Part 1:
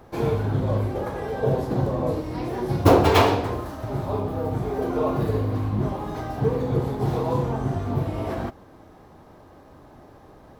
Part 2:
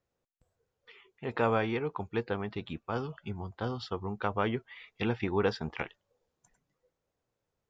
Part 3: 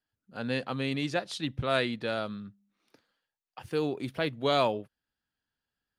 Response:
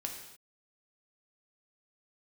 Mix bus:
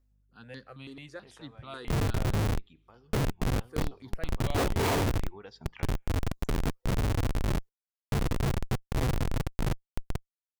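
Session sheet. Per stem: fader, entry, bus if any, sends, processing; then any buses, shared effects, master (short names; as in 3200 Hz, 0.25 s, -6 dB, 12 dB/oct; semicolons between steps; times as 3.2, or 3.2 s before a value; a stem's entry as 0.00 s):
-1.0 dB, 1.70 s, no send, chopper 0.97 Hz, depth 60%, duty 85%; Schmitt trigger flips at -19.5 dBFS
-5.0 dB, 0.00 s, send -20 dB, reverb removal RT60 0.63 s; high shelf 5300 Hz +10 dB; compressor 4:1, threshold -40 dBFS, peak gain reduction 15 dB; auto duck -12 dB, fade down 0.35 s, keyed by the third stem
-11.0 dB, 0.00 s, send -20 dB, hum 50 Hz, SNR 23 dB; step phaser 9.2 Hz 620–2600 Hz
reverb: on, pre-delay 3 ms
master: dry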